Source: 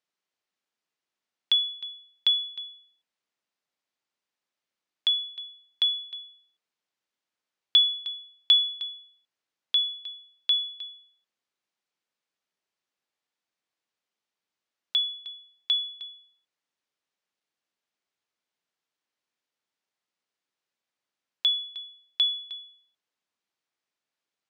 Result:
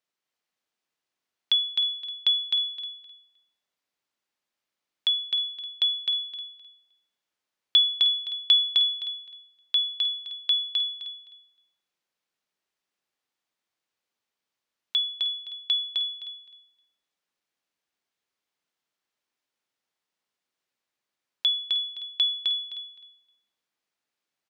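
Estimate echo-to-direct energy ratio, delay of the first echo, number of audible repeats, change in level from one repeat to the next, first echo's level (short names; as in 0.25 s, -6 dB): -3.5 dB, 0.259 s, 3, -13.5 dB, -3.5 dB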